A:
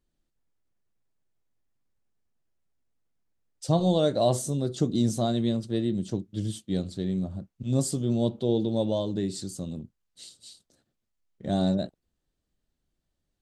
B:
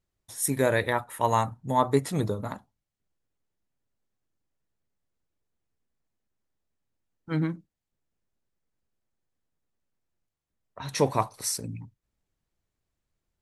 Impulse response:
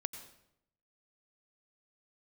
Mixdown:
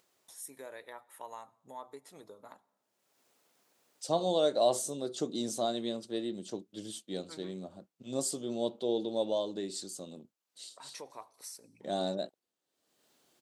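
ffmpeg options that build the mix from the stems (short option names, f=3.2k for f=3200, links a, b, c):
-filter_complex "[0:a]adelay=400,volume=-1.5dB[a];[1:a]acompressor=threshold=-35dB:ratio=2.5,volume=-11.5dB,asplit=2[b][c];[c]volume=-15dB[d];[2:a]atrim=start_sample=2205[e];[d][e]afir=irnorm=-1:irlink=0[f];[a][b][f]amix=inputs=3:normalize=0,highpass=420,equalizer=f=1.8k:w=1.5:g=-3,acompressor=mode=upward:threshold=-53dB:ratio=2.5"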